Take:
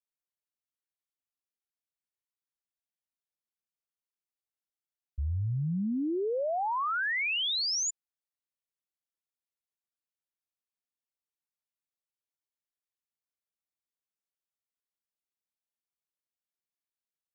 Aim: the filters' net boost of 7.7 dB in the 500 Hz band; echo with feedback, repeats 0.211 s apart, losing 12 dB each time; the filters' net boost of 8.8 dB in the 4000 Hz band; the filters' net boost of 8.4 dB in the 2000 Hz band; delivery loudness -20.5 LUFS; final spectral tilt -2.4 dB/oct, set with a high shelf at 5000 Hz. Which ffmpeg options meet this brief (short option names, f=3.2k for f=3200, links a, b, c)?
-af "equalizer=f=500:t=o:g=9,equalizer=f=2k:t=o:g=7.5,equalizer=f=4k:t=o:g=7,highshelf=f=5k:g=3.5,aecho=1:1:211|422|633:0.251|0.0628|0.0157,volume=2dB"